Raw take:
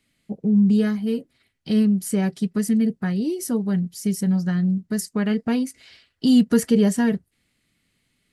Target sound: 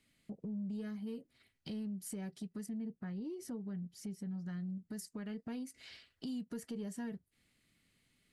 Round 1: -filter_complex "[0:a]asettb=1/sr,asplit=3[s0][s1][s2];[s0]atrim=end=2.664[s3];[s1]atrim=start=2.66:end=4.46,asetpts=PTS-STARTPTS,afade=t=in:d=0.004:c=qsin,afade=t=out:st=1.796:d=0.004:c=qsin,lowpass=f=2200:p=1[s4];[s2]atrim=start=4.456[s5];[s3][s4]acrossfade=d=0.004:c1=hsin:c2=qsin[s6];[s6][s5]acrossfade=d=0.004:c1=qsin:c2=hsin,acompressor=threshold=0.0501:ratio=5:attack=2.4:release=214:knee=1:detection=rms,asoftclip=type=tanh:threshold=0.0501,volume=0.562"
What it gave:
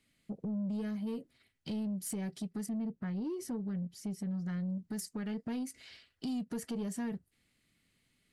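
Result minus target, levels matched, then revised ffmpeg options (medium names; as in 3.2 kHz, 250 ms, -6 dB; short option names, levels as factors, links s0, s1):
compression: peak gain reduction -7 dB
-filter_complex "[0:a]asettb=1/sr,asplit=3[s0][s1][s2];[s0]atrim=end=2.664[s3];[s1]atrim=start=2.66:end=4.46,asetpts=PTS-STARTPTS,afade=t=in:d=0.004:c=qsin,afade=t=out:st=1.796:d=0.004:c=qsin,lowpass=f=2200:p=1[s4];[s2]atrim=start=4.456[s5];[s3][s4]acrossfade=d=0.004:c1=hsin:c2=qsin[s6];[s6][s5]acrossfade=d=0.004:c1=qsin:c2=hsin,acompressor=threshold=0.0188:ratio=5:attack=2.4:release=214:knee=1:detection=rms,asoftclip=type=tanh:threshold=0.0501,volume=0.562"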